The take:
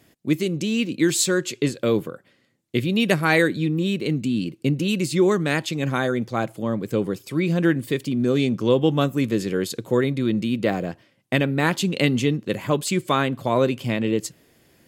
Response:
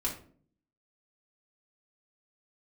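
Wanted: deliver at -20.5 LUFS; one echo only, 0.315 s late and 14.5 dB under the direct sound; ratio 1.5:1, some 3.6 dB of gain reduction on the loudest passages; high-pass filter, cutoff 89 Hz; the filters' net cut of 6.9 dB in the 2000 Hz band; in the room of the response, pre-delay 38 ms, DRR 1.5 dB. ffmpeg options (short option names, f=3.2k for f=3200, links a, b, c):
-filter_complex "[0:a]highpass=89,equalizer=f=2k:t=o:g=-9,acompressor=threshold=-24dB:ratio=1.5,aecho=1:1:315:0.188,asplit=2[a][b];[1:a]atrim=start_sample=2205,adelay=38[c];[b][c]afir=irnorm=-1:irlink=0,volume=-5.5dB[d];[a][d]amix=inputs=2:normalize=0,volume=2dB"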